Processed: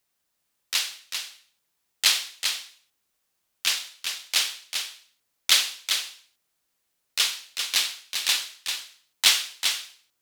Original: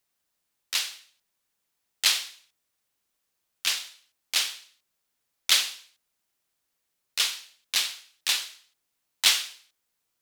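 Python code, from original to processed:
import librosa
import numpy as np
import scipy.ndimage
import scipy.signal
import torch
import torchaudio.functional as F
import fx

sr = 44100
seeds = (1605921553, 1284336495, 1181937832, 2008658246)

y = x + 10.0 ** (-6.5 / 20.0) * np.pad(x, (int(394 * sr / 1000.0), 0))[:len(x)]
y = y * librosa.db_to_amplitude(2.0)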